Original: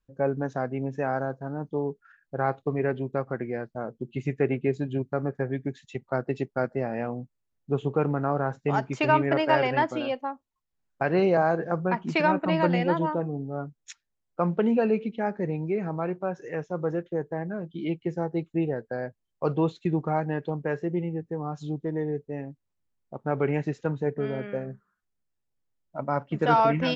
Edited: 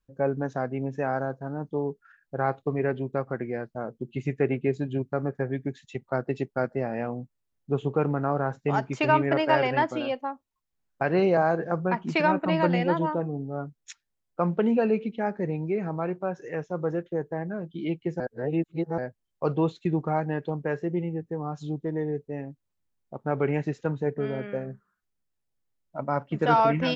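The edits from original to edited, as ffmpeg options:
-filter_complex "[0:a]asplit=3[s0][s1][s2];[s0]atrim=end=18.202[s3];[s1]atrim=start=18.198:end=18.982,asetpts=PTS-STARTPTS,areverse[s4];[s2]atrim=start=18.978[s5];[s3][s4]acrossfade=d=0.004:c1=hsin:c2=hsin[s6];[s6][s5]acrossfade=d=0.004:c1=hsin:c2=hsin"

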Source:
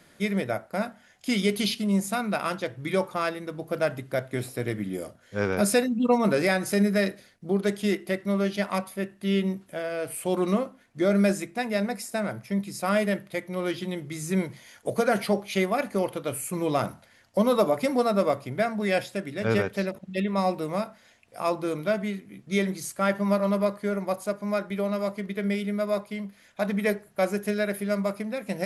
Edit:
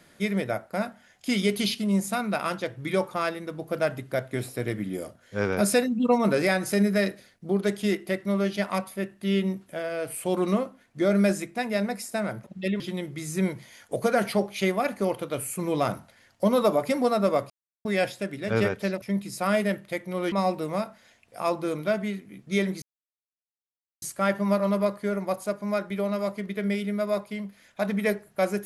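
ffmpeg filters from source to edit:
-filter_complex "[0:a]asplit=8[s0][s1][s2][s3][s4][s5][s6][s7];[s0]atrim=end=12.442[s8];[s1]atrim=start=19.958:end=20.322[s9];[s2]atrim=start=13.738:end=18.44,asetpts=PTS-STARTPTS,afade=t=out:st=4.698:d=0.004:c=hsin[s10];[s3]atrim=start=18.44:end=18.79,asetpts=PTS-STARTPTS,volume=0[s11];[s4]atrim=start=18.79:end=19.962,asetpts=PTS-STARTPTS,afade=t=in:d=0.004:c=hsin[s12];[s5]atrim=start=12.438:end=13.742[s13];[s6]atrim=start=20.318:end=22.82,asetpts=PTS-STARTPTS,afade=t=out:st=2.498:d=0.004:c=hsin,apad=pad_dur=1.2[s14];[s7]atrim=start=22.82,asetpts=PTS-STARTPTS,afade=t=in:d=0.004:c=hsin[s15];[s8][s9]acrossfade=d=0.004:c1=hsin:c2=hsin[s16];[s10][s11][s12]concat=n=3:v=0:a=1[s17];[s16][s17]acrossfade=d=0.004:c1=hsin:c2=hsin[s18];[s18][s13]acrossfade=d=0.004:c1=hsin:c2=hsin[s19];[s14][s15]concat=n=2:v=0:a=1[s20];[s19][s20]acrossfade=d=0.004:c1=hsin:c2=hsin"

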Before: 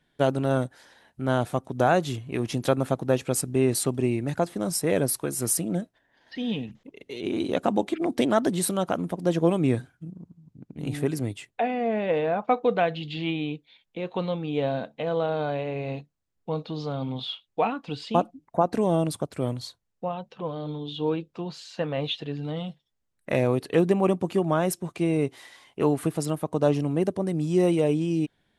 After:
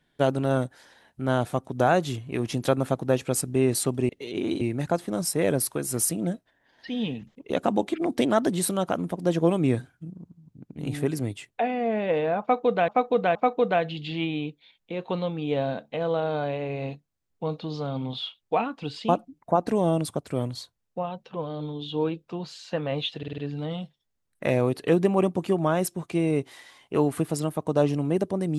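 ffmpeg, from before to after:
-filter_complex "[0:a]asplit=10[s0][s1][s2][s3][s4][s5][s6][s7][s8][s9];[s0]atrim=end=4.092[s10];[s1]atrim=start=6.978:end=7.502[s11];[s2]atrim=start=4.088:end=6.982[s12];[s3]atrim=start=7.498:end=12.882[s13];[s4]atrim=start=12.408:end=12.882[s14];[s5]atrim=start=12.408:end=22.292[s15];[s6]atrim=start=22.238:end=22.292[s16];[s7]atrim=start=22.238:end=22.292[s17];[s8]atrim=start=22.238:end=22.292[s18];[s9]atrim=start=22.238[s19];[s10][s11]acrossfade=d=0.004:c1=hsin:c2=hsin[s20];[s20][s12]acrossfade=d=0.004:c1=hsin:c2=hsin[s21];[s21][s13]acrossfade=d=0.004:c1=hsin:c2=hsin[s22];[s22][s14]acrossfade=d=0.004:c1=hsin:c2=hsin[s23];[s23][s15]acrossfade=d=0.004:c1=hsin:c2=hsin[s24];[s24][s16]acrossfade=d=0.004:c1=hsin:c2=hsin[s25];[s25][s17]acrossfade=d=0.004:c1=hsin:c2=hsin[s26];[s26][s18]acrossfade=d=0.004:c1=hsin:c2=hsin[s27];[s27][s19]acrossfade=d=0.004:c1=hsin:c2=hsin"

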